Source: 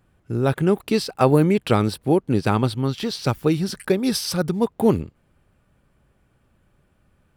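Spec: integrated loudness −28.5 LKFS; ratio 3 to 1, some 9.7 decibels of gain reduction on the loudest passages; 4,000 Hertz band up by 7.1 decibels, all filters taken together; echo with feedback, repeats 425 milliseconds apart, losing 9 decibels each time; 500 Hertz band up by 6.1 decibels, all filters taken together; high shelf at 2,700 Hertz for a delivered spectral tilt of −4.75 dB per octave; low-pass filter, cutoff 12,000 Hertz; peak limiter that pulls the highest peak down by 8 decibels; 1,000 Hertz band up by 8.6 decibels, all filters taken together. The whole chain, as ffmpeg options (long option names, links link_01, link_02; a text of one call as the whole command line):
ffmpeg -i in.wav -af "lowpass=12000,equalizer=frequency=500:width_type=o:gain=5.5,equalizer=frequency=1000:width_type=o:gain=8.5,highshelf=frequency=2700:gain=5.5,equalizer=frequency=4000:width_type=o:gain=3.5,acompressor=threshold=-17dB:ratio=3,alimiter=limit=-12dB:level=0:latency=1,aecho=1:1:425|850|1275|1700:0.355|0.124|0.0435|0.0152,volume=-5dB" out.wav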